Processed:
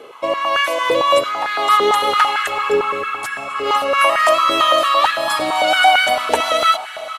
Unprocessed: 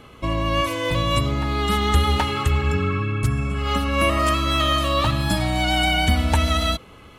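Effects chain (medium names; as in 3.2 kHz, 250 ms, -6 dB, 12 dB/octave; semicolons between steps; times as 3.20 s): resampled via 32 kHz; on a send: echo that smears into a reverb 546 ms, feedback 59%, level -16 dB; on the sum: step-sequenced high-pass 8.9 Hz 450–1600 Hz; trim +3.5 dB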